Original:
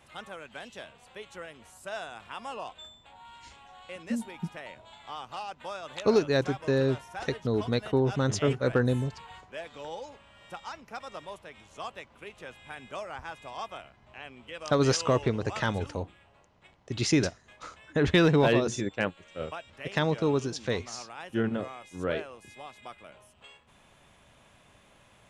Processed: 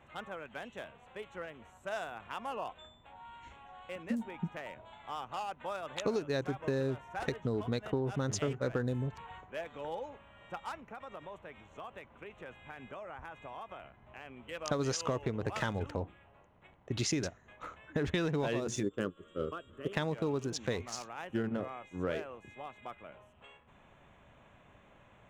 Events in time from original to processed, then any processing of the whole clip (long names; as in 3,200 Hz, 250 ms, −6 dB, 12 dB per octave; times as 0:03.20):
0:10.89–0:14.32: downward compressor, threshold −40 dBFS
0:18.83–0:19.93: drawn EQ curve 150 Hz 0 dB, 410 Hz +8 dB, 840 Hz −16 dB, 1,200 Hz +4 dB, 2,300 Hz −16 dB, 3,300 Hz +4 dB, 4,900 Hz −23 dB, 7,500 Hz +5 dB
whole clip: adaptive Wiener filter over 9 samples; dynamic equaliser 6,600 Hz, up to +5 dB, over −58 dBFS, Q 3.7; downward compressor 6 to 1, threshold −30 dBFS